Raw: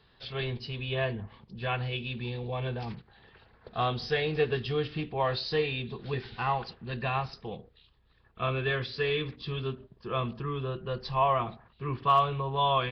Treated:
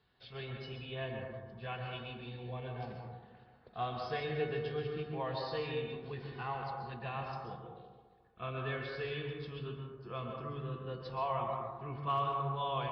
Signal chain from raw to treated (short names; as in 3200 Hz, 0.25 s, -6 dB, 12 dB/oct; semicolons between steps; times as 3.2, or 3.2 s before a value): HPF 47 Hz; high shelf 4500 Hz -6.5 dB; resonator 740 Hz, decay 0.35 s, mix 80%; on a send: band-limited delay 70 ms, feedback 79%, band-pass 500 Hz, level -15.5 dB; on the sum: plate-style reverb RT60 1.3 s, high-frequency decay 0.3×, pre-delay 0.11 s, DRR 2 dB; gain +3 dB